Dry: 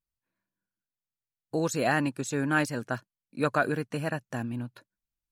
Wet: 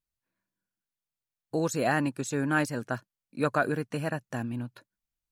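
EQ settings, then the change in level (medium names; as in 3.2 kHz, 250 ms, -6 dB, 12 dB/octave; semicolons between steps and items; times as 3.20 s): dynamic bell 3.2 kHz, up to -3 dB, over -40 dBFS, Q 0.8; 0.0 dB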